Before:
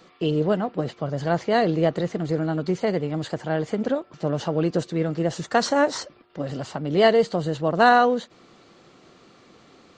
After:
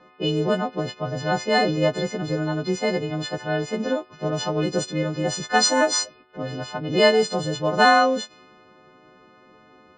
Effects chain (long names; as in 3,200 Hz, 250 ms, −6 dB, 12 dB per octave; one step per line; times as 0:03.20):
every partial snapped to a pitch grid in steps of 3 semitones
low-pass that shuts in the quiet parts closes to 1,500 Hz, open at −18 dBFS